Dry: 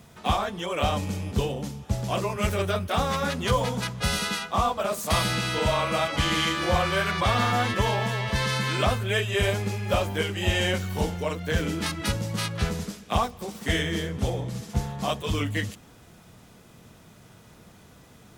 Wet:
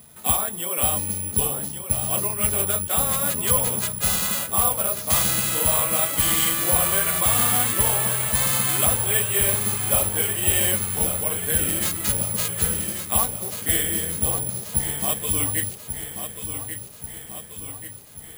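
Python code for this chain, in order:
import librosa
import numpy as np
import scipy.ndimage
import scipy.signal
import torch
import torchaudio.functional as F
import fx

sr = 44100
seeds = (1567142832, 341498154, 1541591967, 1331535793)

p1 = fx.high_shelf(x, sr, hz=4400.0, db=7.5)
p2 = p1 + fx.echo_feedback(p1, sr, ms=1136, feedback_pct=58, wet_db=-9, dry=0)
p3 = (np.kron(scipy.signal.resample_poly(p2, 1, 4), np.eye(4)[0]) * 4)[:len(p2)]
y = F.gain(torch.from_numpy(p3), -3.5).numpy()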